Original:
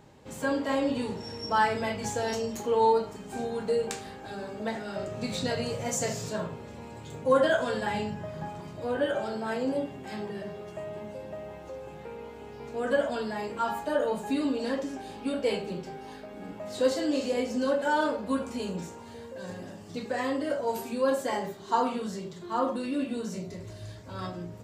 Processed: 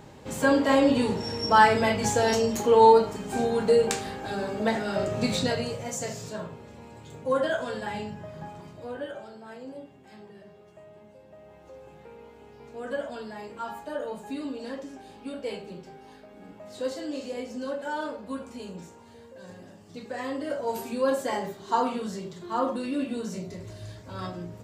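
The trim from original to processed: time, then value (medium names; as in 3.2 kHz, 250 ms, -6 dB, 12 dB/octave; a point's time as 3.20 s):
5.26 s +7 dB
5.88 s -3 dB
8.65 s -3 dB
9.34 s -12 dB
11.26 s -12 dB
11.76 s -6 dB
19.86 s -6 dB
20.83 s +1 dB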